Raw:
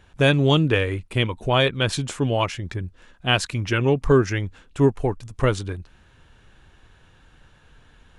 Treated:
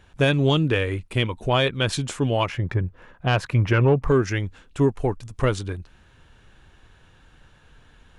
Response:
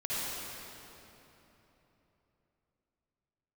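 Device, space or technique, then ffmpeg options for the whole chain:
soft clipper into limiter: -filter_complex "[0:a]asettb=1/sr,asplit=3[a][b][c];[a]atrim=end=2.494[d];[b]atrim=start=2.49:end=4.08,asetpts=PTS-STARTPTS,afade=t=in:d=0.004:c=qsin,afade=t=out:st=1.586:d=0.004:c=qsin,equalizer=f=125:t=o:w=1:g=8,equalizer=f=500:t=o:w=1:g=6,equalizer=f=1k:t=o:w=1:g=6,equalizer=f=2k:t=o:w=1:g=3,equalizer=f=4k:t=o:w=1:g=-5,equalizer=f=8k:t=o:w=1:g=-10[e];[c]atrim=start=4.076[f];[d][e]acrossfade=d=0.004:c1=hsin:c2=qsin[g];[g][f]acrossfade=d=0.004:c1=qsin:c2=hsin,asoftclip=type=tanh:threshold=-4.5dB,alimiter=limit=-10.5dB:level=0:latency=1:release=217"

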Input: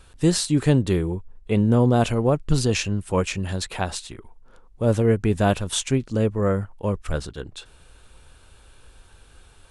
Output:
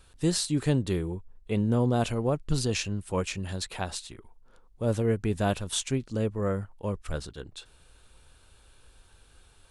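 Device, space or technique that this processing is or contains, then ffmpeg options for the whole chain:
presence and air boost: -af "equalizer=f=4.2k:t=o:w=0.77:g=2.5,highshelf=f=9.6k:g=5.5,volume=-7dB"

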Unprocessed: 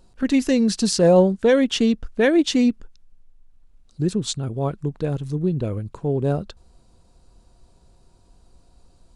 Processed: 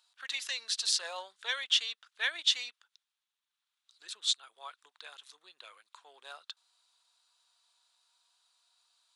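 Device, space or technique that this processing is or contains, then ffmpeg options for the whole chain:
headphones lying on a table: -af "highpass=f=1.1k:w=0.5412,highpass=f=1.1k:w=1.3066,equalizer=f=3.6k:t=o:w=0.55:g=10,volume=-7dB"

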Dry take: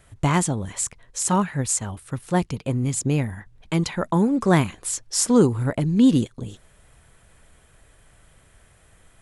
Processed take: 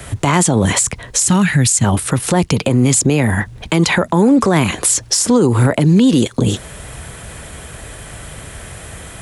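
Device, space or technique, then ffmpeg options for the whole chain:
mastering chain: -filter_complex "[0:a]asettb=1/sr,asplit=3[a][b][c];[a]atrim=end=1.264[d];[b]atrim=start=1.26:end=1.84,asetpts=PTS-STARTPTS,afade=t=in:d=0.004:c=qsin,afade=t=out:st=0.576:d=0.004:c=qsin,equalizer=f=125:t=o:w=1:g=5,equalizer=f=500:t=o:w=1:g=-11,equalizer=f=1k:t=o:w=1:g=-10[e];[c]atrim=start=1.836[f];[d][e]acrossfade=d=0.004:c1=hsin:c2=qsin[g];[g][f]acrossfade=d=0.004:c1=qsin:c2=hsin,highpass=50,equalizer=f=1.3k:t=o:w=1.5:g=-2,acrossover=split=110|320[h][i][j];[h]acompressor=threshold=-47dB:ratio=4[k];[i]acompressor=threshold=-33dB:ratio=4[l];[j]acompressor=threshold=-27dB:ratio=4[m];[k][l][m]amix=inputs=3:normalize=0,acompressor=threshold=-31dB:ratio=2,asoftclip=type=hard:threshold=-18.5dB,alimiter=level_in=28dB:limit=-1dB:release=50:level=0:latency=1,volume=-3.5dB"

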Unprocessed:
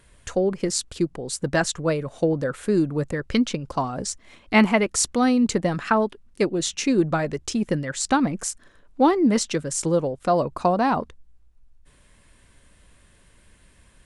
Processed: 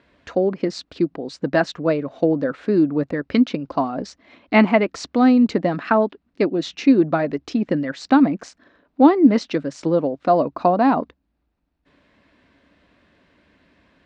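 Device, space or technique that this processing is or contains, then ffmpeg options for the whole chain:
guitar cabinet: -af "highpass=110,equalizer=f=120:t=q:w=4:g=-9,equalizer=f=280:t=q:w=4:g=9,equalizer=f=660:t=q:w=4:g=5,equalizer=f=3.2k:t=q:w=4:g=-4,lowpass=f=4.3k:w=0.5412,lowpass=f=4.3k:w=1.3066,volume=1dB"

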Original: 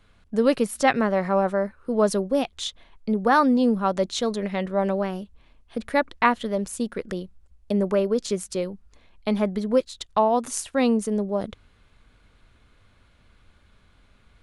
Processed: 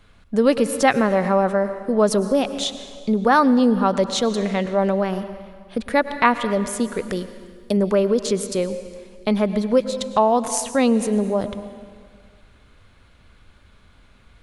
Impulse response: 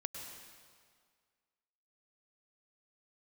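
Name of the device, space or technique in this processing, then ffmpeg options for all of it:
ducked reverb: -filter_complex "[0:a]asettb=1/sr,asplit=3[a][b][c];[a]atrim=end=7.124[d];[b]atrim=start=7.12:end=7.77,asetpts=PTS-STARTPTS,afade=t=in:d=0.004:c=qsin,afade=t=out:st=0.646:d=0.004:c=qsin,bass=f=250:g=-2,treble=f=4k:g=8[e];[c]atrim=start=7.766[f];[d][e]acrossfade=d=0.004:c1=hsin:c2=qsin[g];[g][f]acrossfade=d=0.004:c1=qsin:c2=hsin,asplit=3[h][i][j];[1:a]atrim=start_sample=2205[k];[i][k]afir=irnorm=-1:irlink=0[l];[j]apad=whole_len=636011[m];[l][m]sidechaincompress=threshold=-23dB:ratio=8:attack=8.8:release=105,volume=-2.5dB[n];[h][n]amix=inputs=2:normalize=0,volume=1.5dB"

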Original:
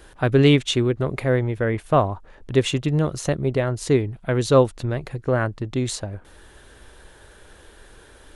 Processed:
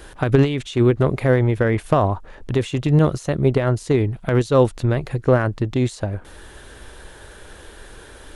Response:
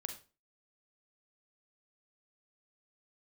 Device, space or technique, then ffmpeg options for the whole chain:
de-esser from a sidechain: -filter_complex "[0:a]asplit=2[a][b];[b]highpass=4.1k,apad=whole_len=368275[c];[a][c]sidechaincompress=threshold=-43dB:ratio=4:attack=1:release=52,volume=6.5dB"

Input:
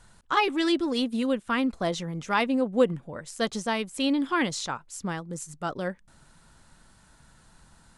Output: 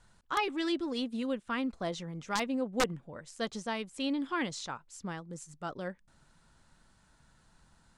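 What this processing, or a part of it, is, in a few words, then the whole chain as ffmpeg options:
overflowing digital effects unit: -af "aeval=exprs='(mod(4.22*val(0)+1,2)-1)/4.22':c=same,lowpass=8.6k,volume=-7.5dB"

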